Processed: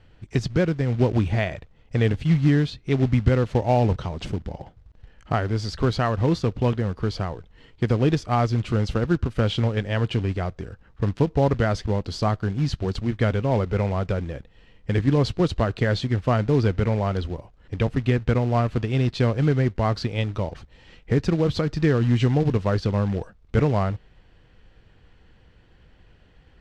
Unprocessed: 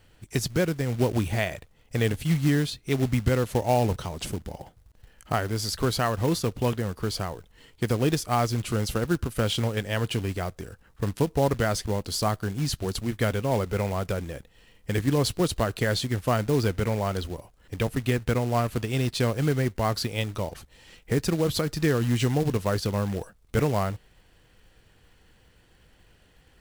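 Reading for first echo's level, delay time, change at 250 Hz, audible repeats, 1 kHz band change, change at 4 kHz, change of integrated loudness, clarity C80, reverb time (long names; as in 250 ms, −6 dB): no echo audible, no echo audible, +4.0 dB, no echo audible, +1.5 dB, −2.5 dB, +3.5 dB, no reverb audible, no reverb audible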